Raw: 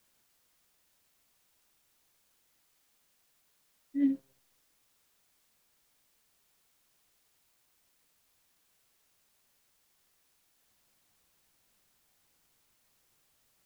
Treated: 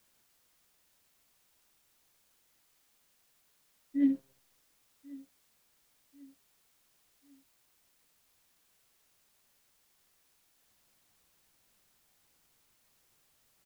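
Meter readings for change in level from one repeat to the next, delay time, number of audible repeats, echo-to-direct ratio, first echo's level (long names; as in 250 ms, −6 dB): −8.0 dB, 1,092 ms, 2, −20.0 dB, −21.0 dB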